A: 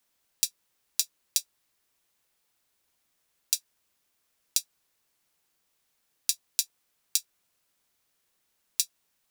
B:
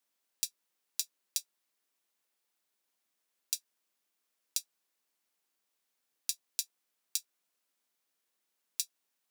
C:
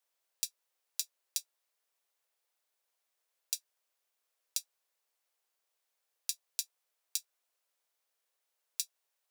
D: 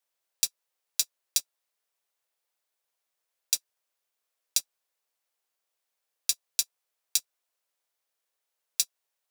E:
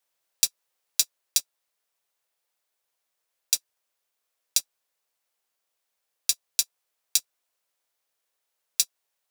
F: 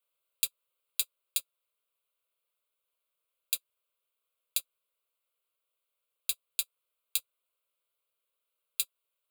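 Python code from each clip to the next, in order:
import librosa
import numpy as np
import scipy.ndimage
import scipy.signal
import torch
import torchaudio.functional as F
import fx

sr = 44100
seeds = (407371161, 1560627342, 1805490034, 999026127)

y1 = scipy.signal.sosfilt(scipy.signal.butter(4, 190.0, 'highpass', fs=sr, output='sos'), x)
y1 = y1 * 10.0 ** (-7.5 / 20.0)
y2 = fx.ladder_highpass(y1, sr, hz=400.0, resonance_pct=30)
y2 = y2 * 10.0 ** (5.5 / 20.0)
y3 = fx.leveller(y2, sr, passes=2)
y3 = y3 * 10.0 ** (3.5 / 20.0)
y4 = fx.rider(y3, sr, range_db=10, speed_s=0.5)
y4 = y4 * 10.0 ** (4.5 / 20.0)
y5 = fx.fixed_phaser(y4, sr, hz=1200.0, stages=8)
y5 = y5 * 10.0 ** (-2.5 / 20.0)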